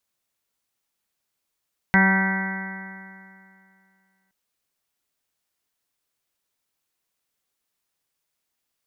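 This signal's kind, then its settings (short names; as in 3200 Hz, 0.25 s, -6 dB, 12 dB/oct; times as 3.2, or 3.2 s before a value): stretched partials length 2.37 s, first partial 190 Hz, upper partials -14.5/-18/-9/-8.5/-17/-16/-2.5/-14/-2/-12.5 dB, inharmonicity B 0.00061, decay 2.43 s, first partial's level -16 dB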